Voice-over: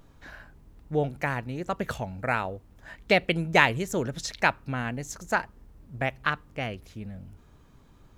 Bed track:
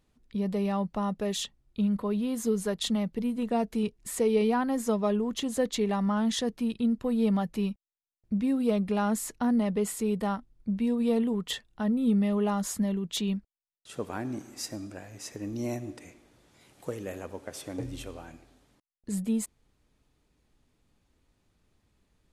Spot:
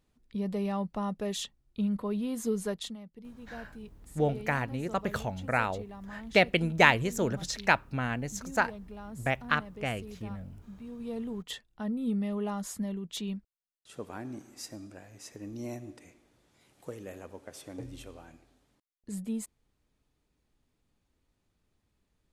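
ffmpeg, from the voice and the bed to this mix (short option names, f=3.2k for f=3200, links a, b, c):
-filter_complex "[0:a]adelay=3250,volume=-1dB[a];[1:a]volume=8.5dB,afade=t=out:st=2.71:d=0.25:silence=0.188365,afade=t=in:st=10.86:d=0.68:silence=0.266073[b];[a][b]amix=inputs=2:normalize=0"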